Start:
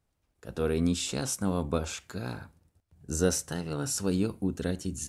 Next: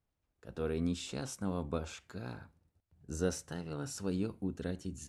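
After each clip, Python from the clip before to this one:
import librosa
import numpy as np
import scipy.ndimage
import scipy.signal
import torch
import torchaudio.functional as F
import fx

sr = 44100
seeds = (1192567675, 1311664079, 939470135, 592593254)

y = fx.high_shelf(x, sr, hz=6800.0, db=-10.5)
y = F.gain(torch.from_numpy(y), -7.0).numpy()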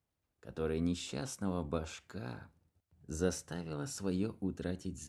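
y = scipy.signal.sosfilt(scipy.signal.butter(2, 59.0, 'highpass', fs=sr, output='sos'), x)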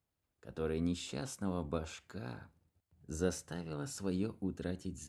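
y = fx.notch(x, sr, hz=5700.0, q=23.0)
y = F.gain(torch.from_numpy(y), -1.0).numpy()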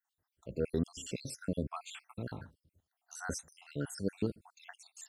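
y = fx.spec_dropout(x, sr, seeds[0], share_pct=68)
y = F.gain(torch.from_numpy(y), 5.5).numpy()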